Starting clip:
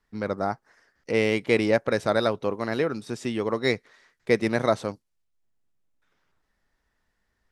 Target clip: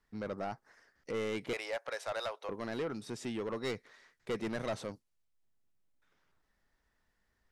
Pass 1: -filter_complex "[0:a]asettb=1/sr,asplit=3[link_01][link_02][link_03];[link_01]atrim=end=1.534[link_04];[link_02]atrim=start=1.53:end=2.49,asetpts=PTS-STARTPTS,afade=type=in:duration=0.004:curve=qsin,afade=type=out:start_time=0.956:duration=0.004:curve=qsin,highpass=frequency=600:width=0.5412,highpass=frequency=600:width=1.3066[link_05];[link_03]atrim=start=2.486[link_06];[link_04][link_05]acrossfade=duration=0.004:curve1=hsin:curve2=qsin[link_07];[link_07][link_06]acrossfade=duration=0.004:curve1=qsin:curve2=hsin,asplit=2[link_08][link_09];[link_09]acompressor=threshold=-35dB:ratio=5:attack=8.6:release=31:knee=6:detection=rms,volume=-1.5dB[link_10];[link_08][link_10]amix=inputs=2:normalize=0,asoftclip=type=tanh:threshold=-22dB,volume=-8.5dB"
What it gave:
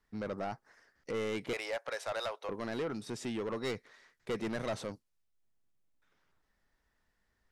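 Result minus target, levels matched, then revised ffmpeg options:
downward compressor: peak gain reduction −9.5 dB
-filter_complex "[0:a]asettb=1/sr,asplit=3[link_01][link_02][link_03];[link_01]atrim=end=1.534[link_04];[link_02]atrim=start=1.53:end=2.49,asetpts=PTS-STARTPTS,afade=type=in:duration=0.004:curve=qsin,afade=type=out:start_time=0.956:duration=0.004:curve=qsin,highpass=frequency=600:width=0.5412,highpass=frequency=600:width=1.3066[link_05];[link_03]atrim=start=2.486[link_06];[link_04][link_05]acrossfade=duration=0.004:curve1=hsin:curve2=qsin[link_07];[link_07][link_06]acrossfade=duration=0.004:curve1=qsin:curve2=hsin,asplit=2[link_08][link_09];[link_09]acompressor=threshold=-47dB:ratio=5:attack=8.6:release=31:knee=6:detection=rms,volume=-1.5dB[link_10];[link_08][link_10]amix=inputs=2:normalize=0,asoftclip=type=tanh:threshold=-22dB,volume=-8.5dB"

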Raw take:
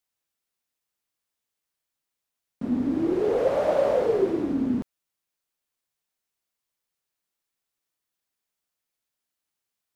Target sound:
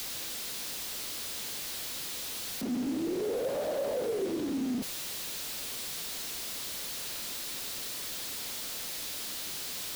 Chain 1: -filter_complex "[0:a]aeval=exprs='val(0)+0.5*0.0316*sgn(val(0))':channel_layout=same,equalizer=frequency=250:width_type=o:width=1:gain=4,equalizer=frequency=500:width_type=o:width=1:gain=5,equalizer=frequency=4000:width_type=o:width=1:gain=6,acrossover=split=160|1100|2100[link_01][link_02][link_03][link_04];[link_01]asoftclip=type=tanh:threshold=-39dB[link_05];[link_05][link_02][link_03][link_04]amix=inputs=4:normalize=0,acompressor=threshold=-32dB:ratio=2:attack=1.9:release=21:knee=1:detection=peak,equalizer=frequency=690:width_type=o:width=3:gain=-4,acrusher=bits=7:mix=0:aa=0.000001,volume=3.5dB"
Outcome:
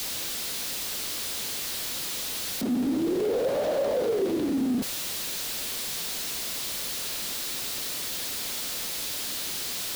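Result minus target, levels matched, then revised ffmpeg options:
downward compressor: peak gain reduction −6 dB
-filter_complex "[0:a]aeval=exprs='val(0)+0.5*0.0316*sgn(val(0))':channel_layout=same,equalizer=frequency=250:width_type=o:width=1:gain=4,equalizer=frequency=500:width_type=o:width=1:gain=5,equalizer=frequency=4000:width_type=o:width=1:gain=6,acrossover=split=160|1100|2100[link_01][link_02][link_03][link_04];[link_01]asoftclip=type=tanh:threshold=-39dB[link_05];[link_05][link_02][link_03][link_04]amix=inputs=4:normalize=0,acompressor=threshold=-44dB:ratio=2:attack=1.9:release=21:knee=1:detection=peak,equalizer=frequency=690:width_type=o:width=3:gain=-4,acrusher=bits=7:mix=0:aa=0.000001,volume=3.5dB"

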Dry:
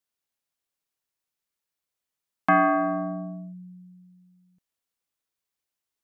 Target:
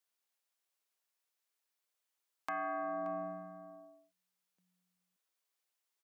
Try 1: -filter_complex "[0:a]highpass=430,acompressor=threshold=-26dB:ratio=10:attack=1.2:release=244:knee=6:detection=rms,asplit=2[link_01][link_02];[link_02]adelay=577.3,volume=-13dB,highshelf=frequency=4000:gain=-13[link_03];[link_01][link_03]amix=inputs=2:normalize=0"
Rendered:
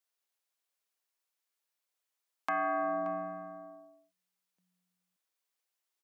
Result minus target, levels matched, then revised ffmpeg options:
downward compressor: peak gain reduction −6.5 dB
-filter_complex "[0:a]highpass=430,acompressor=threshold=-33dB:ratio=10:attack=1.2:release=244:knee=6:detection=rms,asplit=2[link_01][link_02];[link_02]adelay=577.3,volume=-13dB,highshelf=frequency=4000:gain=-13[link_03];[link_01][link_03]amix=inputs=2:normalize=0"

